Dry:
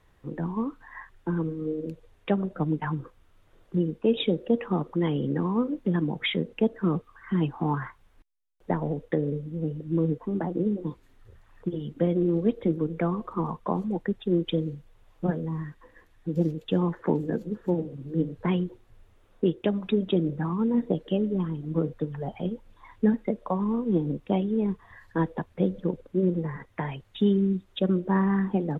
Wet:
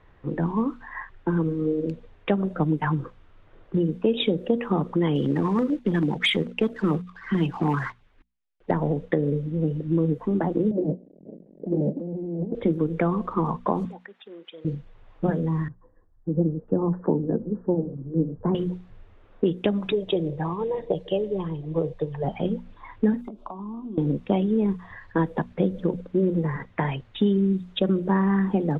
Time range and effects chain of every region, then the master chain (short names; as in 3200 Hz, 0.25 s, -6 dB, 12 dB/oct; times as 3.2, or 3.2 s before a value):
5.15–8.71 low shelf 320 Hz -6 dB + sample leveller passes 1 + LFO notch saw down 9.1 Hz 470–1700 Hz
10.71–12.55 half-waves squared off + elliptic band-pass 170–580 Hz + negative-ratio compressor -33 dBFS
13.85–14.65 HPF 980 Hz + compressor 2.5:1, threshold -49 dBFS
15.68–18.55 Bessel low-pass 800 Hz, order 8 + three-band expander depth 40%
19.92–22.24 bell 1400 Hz +12.5 dB 0.55 oct + fixed phaser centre 580 Hz, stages 4
23.21–23.98 compressor 16:1, threshold -35 dBFS + fixed phaser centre 500 Hz, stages 6
whole clip: low-pass opened by the level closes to 2600 Hz, open at -21.5 dBFS; notches 60/120/180/240 Hz; compressor 2.5:1, threshold -27 dBFS; gain +7 dB